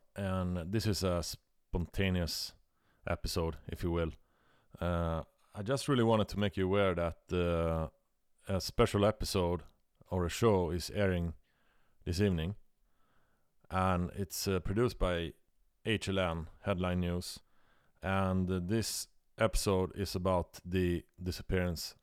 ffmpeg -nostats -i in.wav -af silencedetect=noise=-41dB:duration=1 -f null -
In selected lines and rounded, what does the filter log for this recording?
silence_start: 12.53
silence_end: 13.71 | silence_duration: 1.18